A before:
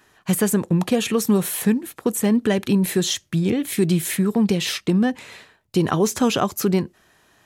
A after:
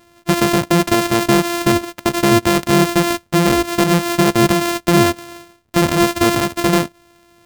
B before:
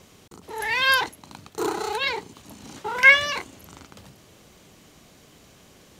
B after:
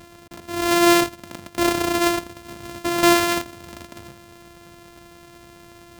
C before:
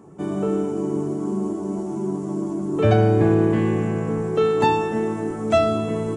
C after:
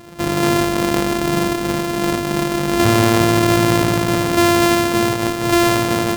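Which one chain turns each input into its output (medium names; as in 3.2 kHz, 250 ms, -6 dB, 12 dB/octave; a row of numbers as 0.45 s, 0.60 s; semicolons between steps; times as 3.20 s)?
sorted samples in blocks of 128 samples; loudness maximiser +11.5 dB; peak normalisation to -6 dBFS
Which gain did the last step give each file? -5.0 dB, -5.0 dB, -5.0 dB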